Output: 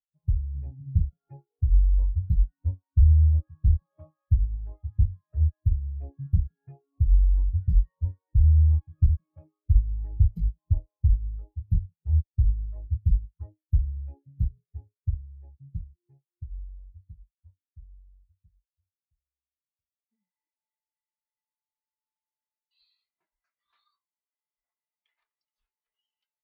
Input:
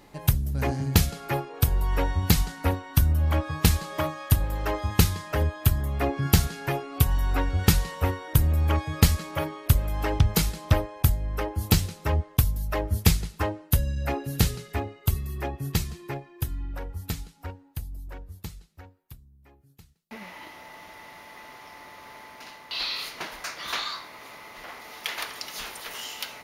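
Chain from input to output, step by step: bass shelf 120 Hz +9 dB; valve stage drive 11 dB, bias 0.5; spectral contrast expander 2.5:1

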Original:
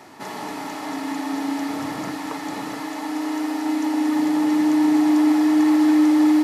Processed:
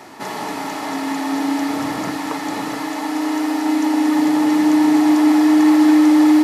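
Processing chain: hum notches 50/100/150/200/250/300 Hz; trim +5.5 dB

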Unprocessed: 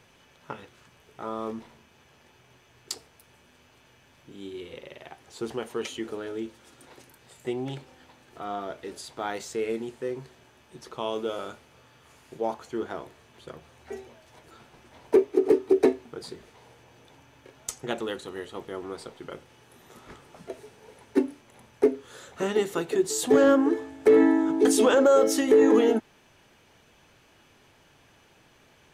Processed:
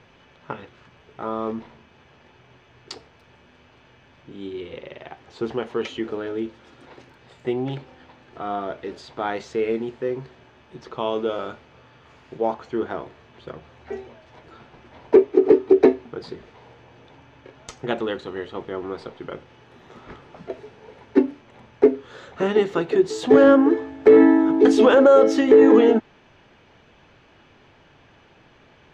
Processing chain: distance through air 190 m; trim +6.5 dB

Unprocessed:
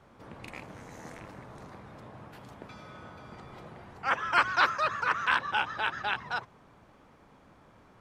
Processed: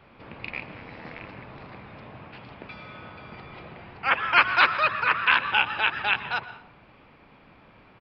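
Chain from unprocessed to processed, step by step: peaking EQ 2.5 kHz +10.5 dB 0.61 oct; on a send at -14 dB: reverberation RT60 0.70 s, pre-delay 120 ms; on the sum: resampled via 11.025 kHz; trim +3 dB

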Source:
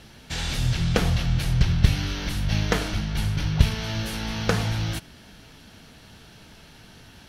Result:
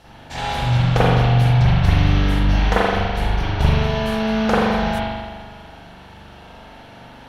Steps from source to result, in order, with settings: peaking EQ 810 Hz +11 dB 1.1 oct; spring tank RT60 1.5 s, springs 41 ms, chirp 35 ms, DRR -9.5 dB; trim -5 dB

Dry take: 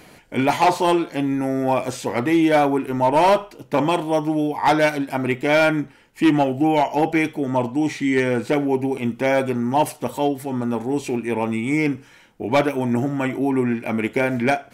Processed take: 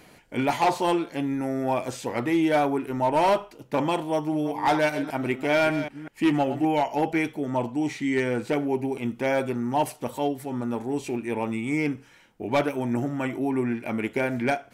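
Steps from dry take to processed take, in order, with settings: 4.13–6.65 s: chunks repeated in reverse 195 ms, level -11 dB; trim -5.5 dB

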